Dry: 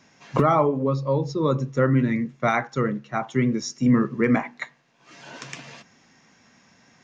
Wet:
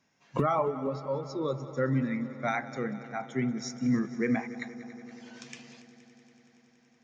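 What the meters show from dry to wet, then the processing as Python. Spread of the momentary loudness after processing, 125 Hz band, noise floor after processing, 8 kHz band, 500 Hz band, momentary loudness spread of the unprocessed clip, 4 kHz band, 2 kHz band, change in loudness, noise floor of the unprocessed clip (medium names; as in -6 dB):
17 LU, -10.5 dB, -65 dBFS, no reading, -8.0 dB, 17 LU, -7.5 dB, -7.5 dB, -8.5 dB, -59 dBFS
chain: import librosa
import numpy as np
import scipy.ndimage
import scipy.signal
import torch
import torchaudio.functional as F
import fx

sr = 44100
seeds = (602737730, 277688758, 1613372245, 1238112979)

y = fx.noise_reduce_blind(x, sr, reduce_db=8)
y = fx.echo_heads(y, sr, ms=94, heads='second and third', feedback_pct=74, wet_db=-17.5)
y = y * 10.0 ** (-7.5 / 20.0)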